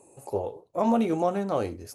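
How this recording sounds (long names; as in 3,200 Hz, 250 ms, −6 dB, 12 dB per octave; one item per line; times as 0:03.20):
background noise floor −63 dBFS
spectral slope −5.0 dB per octave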